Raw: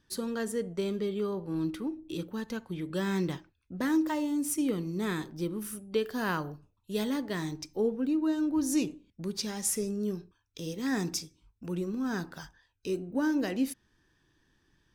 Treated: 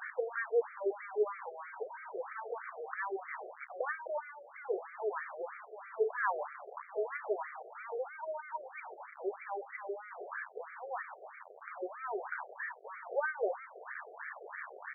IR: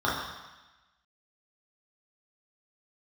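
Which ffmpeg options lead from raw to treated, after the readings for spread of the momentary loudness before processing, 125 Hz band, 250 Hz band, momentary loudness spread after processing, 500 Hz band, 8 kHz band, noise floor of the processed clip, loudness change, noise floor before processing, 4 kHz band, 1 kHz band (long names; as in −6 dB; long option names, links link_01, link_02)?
12 LU, below −40 dB, below −20 dB, 12 LU, −2.0 dB, below −40 dB, −55 dBFS, −7.0 dB, −74 dBFS, below −40 dB, +2.0 dB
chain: -af "aeval=exprs='val(0)+0.5*0.0251*sgn(val(0))':channel_layout=same,aresample=22050,aresample=44100,afftfilt=real='re*between(b*sr/1024,520*pow(1700/520,0.5+0.5*sin(2*PI*3.1*pts/sr))/1.41,520*pow(1700/520,0.5+0.5*sin(2*PI*3.1*pts/sr))*1.41)':imag='im*between(b*sr/1024,520*pow(1700/520,0.5+0.5*sin(2*PI*3.1*pts/sr))/1.41,520*pow(1700/520,0.5+0.5*sin(2*PI*3.1*pts/sr))*1.41)':win_size=1024:overlap=0.75,volume=2.5dB"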